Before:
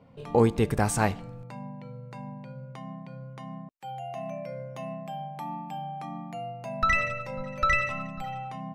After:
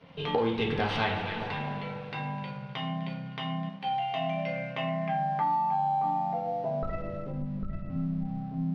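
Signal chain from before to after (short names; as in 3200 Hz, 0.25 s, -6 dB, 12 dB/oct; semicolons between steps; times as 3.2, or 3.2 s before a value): tracing distortion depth 0.11 ms; high shelf 3400 Hz +11 dB; echo with dull and thin repeats by turns 0.127 s, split 1200 Hz, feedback 63%, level -12.5 dB; reverb, pre-delay 3 ms, DRR -3 dB; low-pass sweep 3300 Hz -> 240 Hz, 4.44–7.68; in parallel at -10 dB: hard clip -19 dBFS, distortion -9 dB; on the sum: compressor 5:1, threshold -25 dBFS, peak gain reduction 13 dB; crossover distortion -55 dBFS; polynomial smoothing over 15 samples; low shelf 110 Hz -6.5 dB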